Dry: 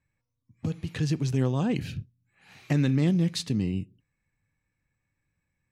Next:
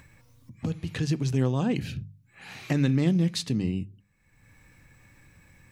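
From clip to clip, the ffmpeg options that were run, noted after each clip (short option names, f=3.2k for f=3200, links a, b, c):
-filter_complex "[0:a]bandreject=f=50:t=h:w=6,bandreject=f=100:t=h:w=6,bandreject=f=150:t=h:w=6,bandreject=f=200:t=h:w=6,asplit=2[a][b];[b]acompressor=mode=upward:threshold=-27dB:ratio=2.5,volume=-0.5dB[c];[a][c]amix=inputs=2:normalize=0,volume=-5dB"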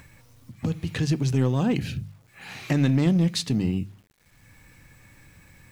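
-filter_complex "[0:a]asplit=2[a][b];[b]asoftclip=type=hard:threshold=-23.5dB,volume=-6dB[c];[a][c]amix=inputs=2:normalize=0,acrusher=bits=9:mix=0:aa=0.000001"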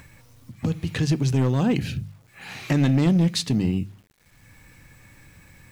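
-af "asoftclip=type=hard:threshold=-16dB,volume=2dB"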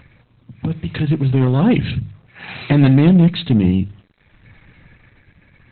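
-af "dynaudnorm=f=230:g=11:m=5.5dB,volume=3dB" -ar 48000 -c:a libopus -b:a 8k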